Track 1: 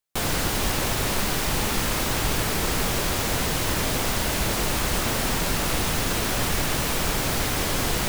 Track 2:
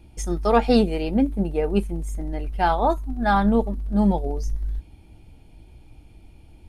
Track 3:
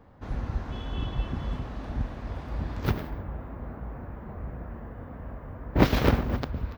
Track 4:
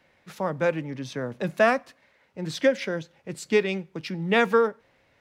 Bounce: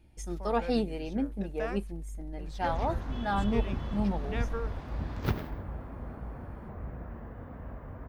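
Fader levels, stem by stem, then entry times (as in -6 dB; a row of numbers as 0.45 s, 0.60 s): mute, -11.0 dB, -3.0 dB, -17.5 dB; mute, 0.00 s, 2.40 s, 0.00 s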